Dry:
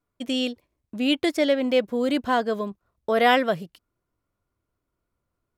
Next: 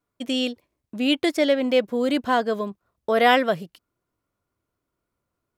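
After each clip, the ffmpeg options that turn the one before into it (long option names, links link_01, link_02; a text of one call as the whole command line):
ffmpeg -i in.wav -af "lowshelf=frequency=65:gain=-11,volume=1.5dB" out.wav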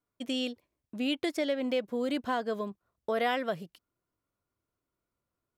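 ffmpeg -i in.wav -af "acompressor=threshold=-21dB:ratio=2.5,volume=-6.5dB" out.wav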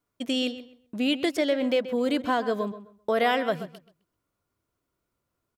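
ffmpeg -i in.wav -filter_complex "[0:a]asplit=2[link_01][link_02];[link_02]adelay=130,lowpass=frequency=3400:poles=1,volume=-13dB,asplit=2[link_03][link_04];[link_04]adelay=130,lowpass=frequency=3400:poles=1,volume=0.24,asplit=2[link_05][link_06];[link_06]adelay=130,lowpass=frequency=3400:poles=1,volume=0.24[link_07];[link_01][link_03][link_05][link_07]amix=inputs=4:normalize=0,volume=5.5dB" out.wav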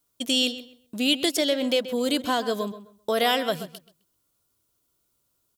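ffmpeg -i in.wav -af "aexciter=amount=4:drive=3.4:freq=3000" out.wav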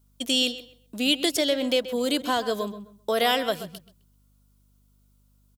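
ffmpeg -i in.wav -filter_complex "[0:a]acrossover=split=160[link_01][link_02];[link_01]adelay=120[link_03];[link_03][link_02]amix=inputs=2:normalize=0,aeval=exprs='val(0)+0.000891*(sin(2*PI*50*n/s)+sin(2*PI*2*50*n/s)/2+sin(2*PI*3*50*n/s)/3+sin(2*PI*4*50*n/s)/4+sin(2*PI*5*50*n/s)/5)':channel_layout=same" out.wav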